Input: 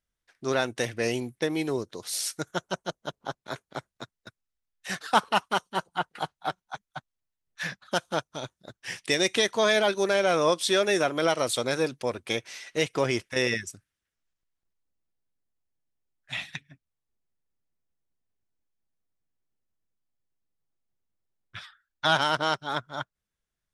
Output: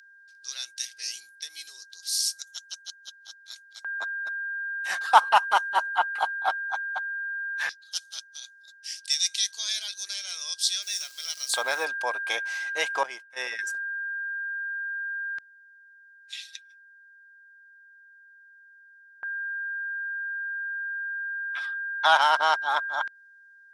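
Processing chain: 10.82–11.85 s: send-on-delta sampling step -40.5 dBFS; whistle 1.6 kHz -32 dBFS; LFO high-pass square 0.13 Hz 870–4800 Hz; 13.03–13.59 s: expander -19 dBFS

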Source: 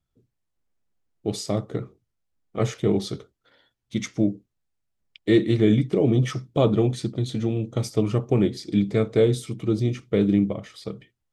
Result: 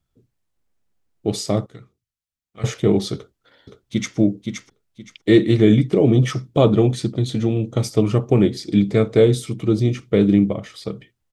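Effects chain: 1.66–2.64 s: amplifier tone stack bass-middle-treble 5-5-5; 3.15–4.17 s: echo throw 520 ms, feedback 25%, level -5.5 dB; trim +5 dB

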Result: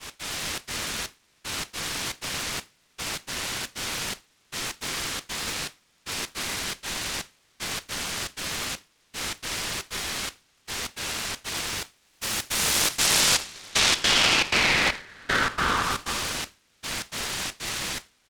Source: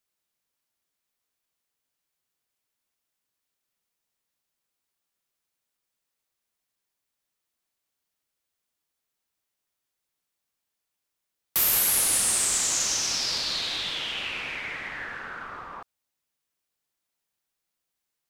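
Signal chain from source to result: jump at every zero crossing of -35.5 dBFS; compression 4:1, threshold -40 dBFS, peak gain reduction 17.5 dB; delay 293 ms -5.5 dB; sine folder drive 8 dB, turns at -19.5 dBFS; low-pass 6.5 kHz 24 dB/octave; on a send: two-band feedback delay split 690 Hz, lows 441 ms, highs 85 ms, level -4 dB; on the sum: trance gate "x.xxxx.xxxx....x" 156 bpm -12 dB; expander -29 dBFS; peaking EQ 690 Hz -8.5 dB 1.8 oct; delay time shaken by noise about 1.6 kHz, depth 0.044 ms; trim +7 dB

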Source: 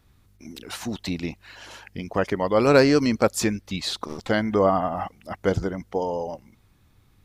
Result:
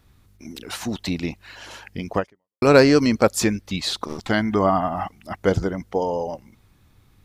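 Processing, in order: 2.18–2.62 s: fade out exponential; 4.17–5.35 s: peaking EQ 510 Hz -11.5 dB 0.3 oct; trim +3 dB

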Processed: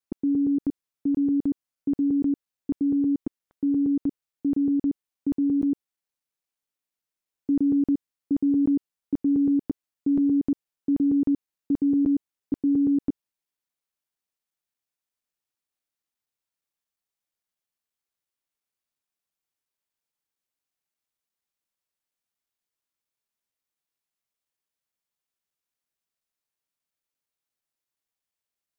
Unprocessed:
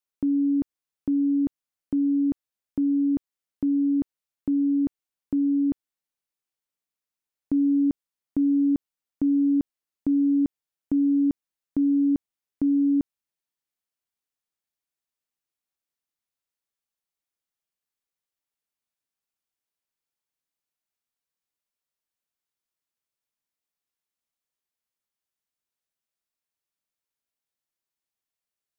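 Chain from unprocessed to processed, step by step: time reversed locally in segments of 117 ms

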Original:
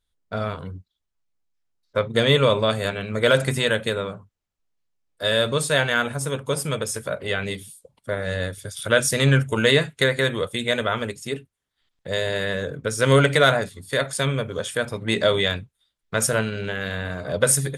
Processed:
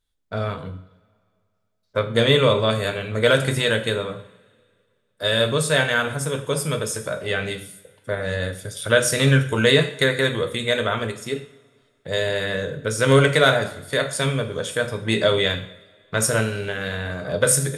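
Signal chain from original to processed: two-slope reverb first 0.57 s, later 2.2 s, from -21 dB, DRR 6.5 dB

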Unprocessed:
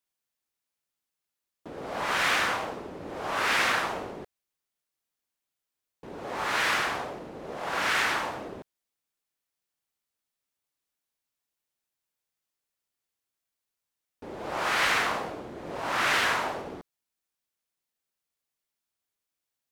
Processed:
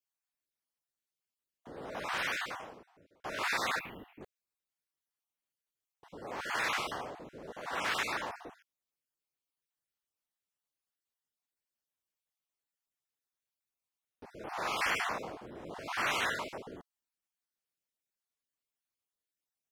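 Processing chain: random holes in the spectrogram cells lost 29%; 1.95–3.24 s: fade out; 3.79–4.21 s: FFT filter 270 Hz 0 dB, 650 Hz -14 dB, 1.6 kHz -12 dB, 2.5 kHz +3 dB, 5.6 kHz -28 dB, 8.8 kHz -24 dB, 13 kHz +3 dB; trim -6 dB

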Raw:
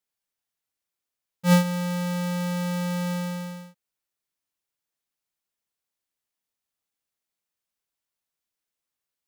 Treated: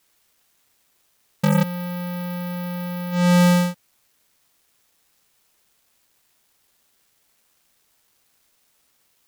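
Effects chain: sine folder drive 19 dB, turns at -13.5 dBFS; bit crusher 10-bit

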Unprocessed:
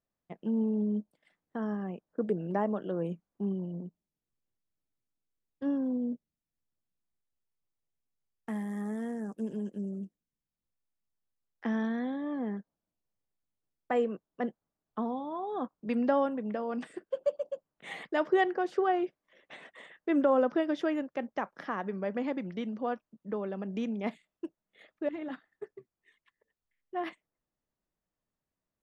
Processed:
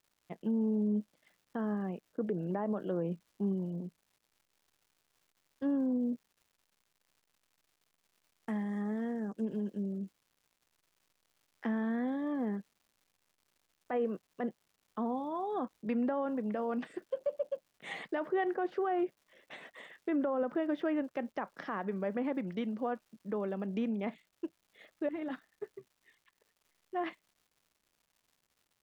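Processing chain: low-pass that closes with the level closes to 2.4 kHz, closed at -28.5 dBFS; crackle 310 per s -59 dBFS; peak limiter -25 dBFS, peak gain reduction 9.5 dB

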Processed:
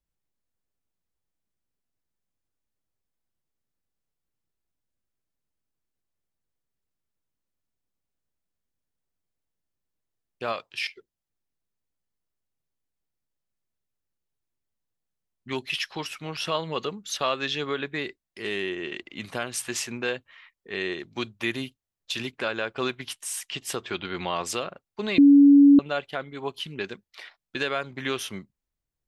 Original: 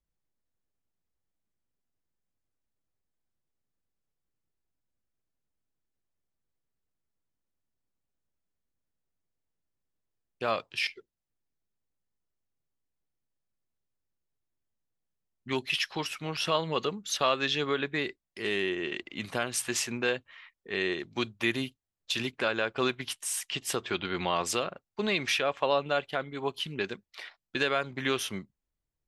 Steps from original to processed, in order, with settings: 10.52–10.97 s: bass shelf 450 Hz -7 dB; 25.18–25.79 s: bleep 283 Hz -10 dBFS

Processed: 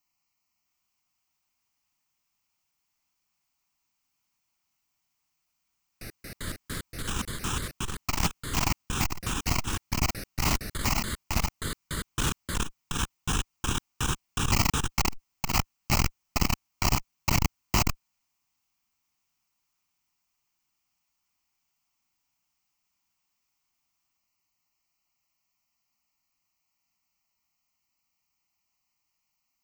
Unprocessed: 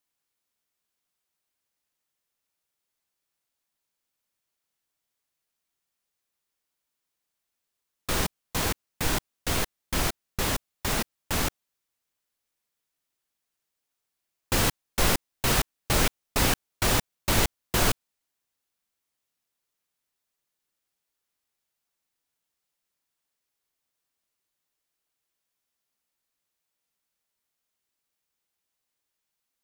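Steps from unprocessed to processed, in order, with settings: static phaser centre 2.4 kHz, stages 8; ever faster or slower copies 656 ms, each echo +4 st, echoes 3, each echo -6 dB; transformer saturation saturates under 300 Hz; trim +6 dB

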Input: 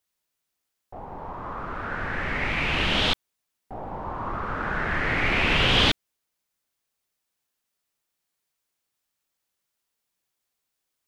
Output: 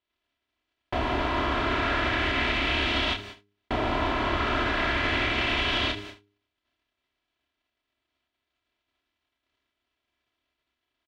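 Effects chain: spectral levelling over time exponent 0.4; high-pass 45 Hz; gate -38 dBFS, range -46 dB; treble shelf 7 kHz -11.5 dB; comb 3 ms, depth 75%; de-hum 101.8 Hz, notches 4; peak limiter -12.5 dBFS, peak gain reduction 8 dB; compression, threshold -24 dBFS, peak gain reduction 6 dB; on a send: early reflections 29 ms -5 dB, 74 ms -13.5 dB

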